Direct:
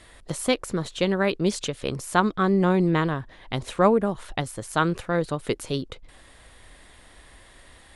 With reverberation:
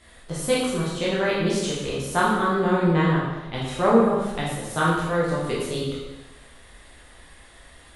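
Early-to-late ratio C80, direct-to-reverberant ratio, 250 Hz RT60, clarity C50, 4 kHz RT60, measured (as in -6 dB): 2.5 dB, -7.5 dB, 1.1 s, 0.0 dB, 1.0 s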